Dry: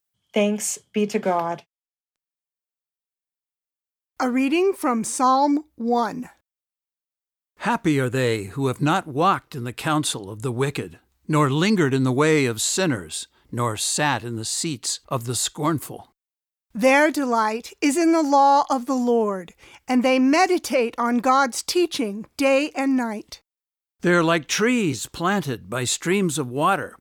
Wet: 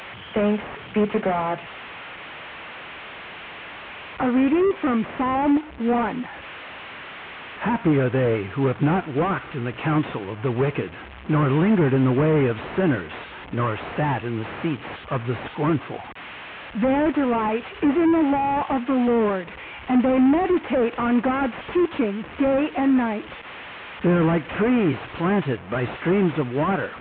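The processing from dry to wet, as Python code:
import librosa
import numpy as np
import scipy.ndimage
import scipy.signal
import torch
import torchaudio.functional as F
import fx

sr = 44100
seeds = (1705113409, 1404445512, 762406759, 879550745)

y = fx.delta_mod(x, sr, bps=16000, step_db=-36.0)
y = scipy.signal.sosfilt(scipy.signal.butter(2, 47.0, 'highpass', fs=sr, output='sos'), y)
y = fx.low_shelf(y, sr, hz=450.0, db=-5.5)
y = y * 10.0 ** (6.5 / 20.0)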